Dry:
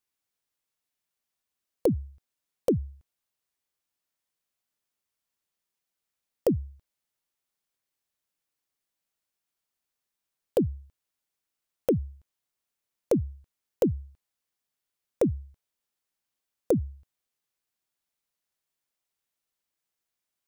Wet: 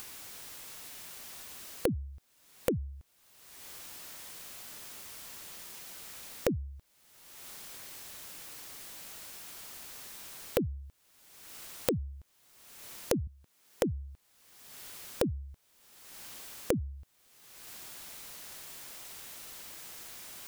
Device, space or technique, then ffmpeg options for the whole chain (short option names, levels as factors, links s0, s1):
upward and downward compression: -filter_complex "[0:a]asettb=1/sr,asplit=3[s0][s1][s2];[s0]atrim=end=13.274[s3];[s1]atrim=start=13.27:end=13.83,asetpts=PTS-STARTPTS,afade=t=in:d=0.004:c=qsin,afade=t=out:st=0.556:d=0.004:c=qsin,highpass=140[s4];[s2]atrim=start=13.826[s5];[s3][s4]acrossfade=d=0.004:c1=hsin:c2=qsin[s6];[s6][s5]acrossfade=d=0.004:c1=qsin:c2=hsin,acompressor=mode=upward:threshold=0.0224:ratio=2.5,acompressor=threshold=0.0112:ratio=6,volume=3.16"